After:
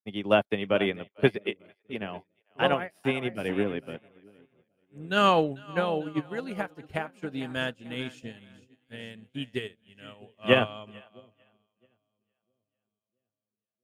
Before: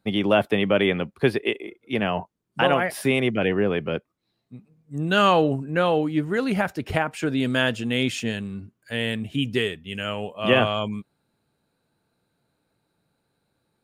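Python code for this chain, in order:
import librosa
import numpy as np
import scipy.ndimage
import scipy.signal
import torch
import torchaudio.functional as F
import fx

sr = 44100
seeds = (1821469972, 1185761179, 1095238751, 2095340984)

y = fx.peak_eq(x, sr, hz=280.0, db=9.0, octaves=0.24, at=(3.49, 3.91))
y = fx.echo_split(y, sr, split_hz=540.0, low_ms=661, high_ms=446, feedback_pct=52, wet_db=-10.5)
y = fx.upward_expand(y, sr, threshold_db=-40.0, expansion=2.5)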